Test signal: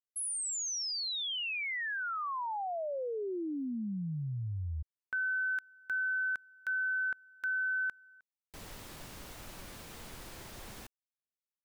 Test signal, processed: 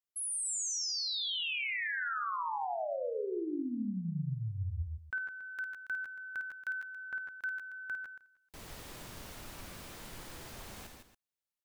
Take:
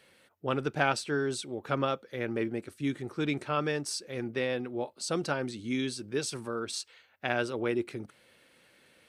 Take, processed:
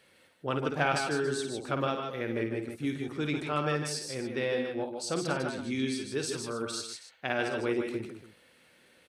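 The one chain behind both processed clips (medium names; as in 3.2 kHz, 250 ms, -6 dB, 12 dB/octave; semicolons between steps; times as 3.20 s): multi-tap echo 53/147/159/279 ms -7.5/-8/-7.5/-14.5 dB; trim -1.5 dB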